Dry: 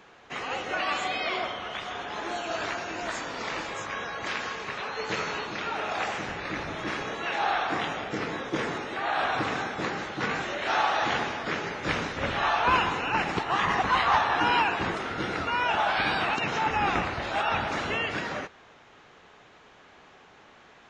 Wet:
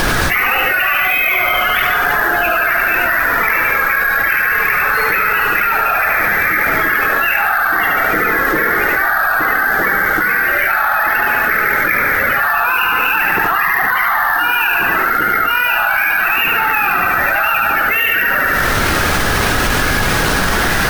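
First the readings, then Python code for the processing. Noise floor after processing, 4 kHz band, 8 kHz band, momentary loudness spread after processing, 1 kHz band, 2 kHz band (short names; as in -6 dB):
-15 dBFS, +10.5 dB, +17.5 dB, 1 LU, +12.0 dB, +19.5 dB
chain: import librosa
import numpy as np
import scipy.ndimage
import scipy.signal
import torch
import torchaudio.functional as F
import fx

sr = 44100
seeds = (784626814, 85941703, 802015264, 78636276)

p1 = fx.spec_topn(x, sr, count=32)
p2 = fx.band_shelf(p1, sr, hz=1900.0, db=12.5, octaves=1.3)
p3 = fx.doubler(p2, sr, ms=26.0, db=-11.5)
p4 = 10.0 ** (-22.5 / 20.0) * np.tanh(p3 / 10.0 ** (-22.5 / 20.0))
p5 = p3 + (p4 * 10.0 ** (-4.0 / 20.0))
p6 = scipy.signal.sosfilt(scipy.signal.butter(2, 6000.0, 'lowpass', fs=sr, output='sos'), p5)
p7 = fx.low_shelf(p6, sr, hz=270.0, db=-11.0)
p8 = fx.echo_feedback(p7, sr, ms=73, feedback_pct=54, wet_db=-5.0)
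p9 = fx.dmg_noise_colour(p8, sr, seeds[0], colour='pink', level_db=-41.0)
p10 = np.repeat(scipy.signal.resample_poly(p9, 1, 3), 3)[:len(p9)]
p11 = fx.env_flatten(p10, sr, amount_pct=100)
y = p11 * 10.0 ** (-2.0 / 20.0)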